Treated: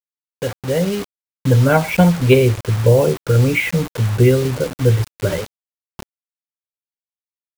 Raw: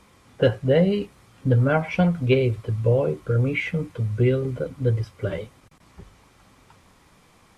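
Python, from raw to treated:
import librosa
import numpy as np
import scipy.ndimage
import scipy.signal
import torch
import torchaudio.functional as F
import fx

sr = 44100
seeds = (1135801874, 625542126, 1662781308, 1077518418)

y = fx.fade_in_head(x, sr, length_s=1.92)
y = fx.small_body(y, sr, hz=(900.0, 3700.0), ring_ms=45, db=7)
y = fx.quant_dither(y, sr, seeds[0], bits=6, dither='none')
y = y * 10.0 ** (7.5 / 20.0)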